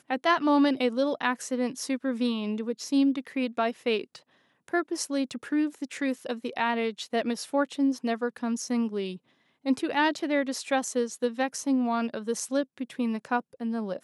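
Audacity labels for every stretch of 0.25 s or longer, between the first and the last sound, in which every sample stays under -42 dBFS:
4.180000	4.680000	silence
9.170000	9.650000	silence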